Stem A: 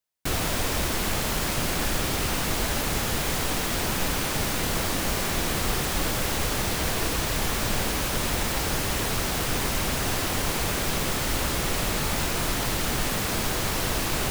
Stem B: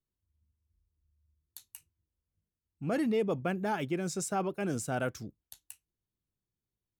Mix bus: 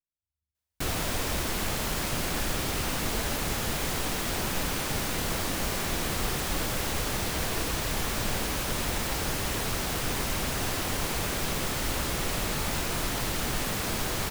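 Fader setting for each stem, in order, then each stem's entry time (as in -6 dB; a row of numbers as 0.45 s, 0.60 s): -3.5 dB, -16.0 dB; 0.55 s, 0.00 s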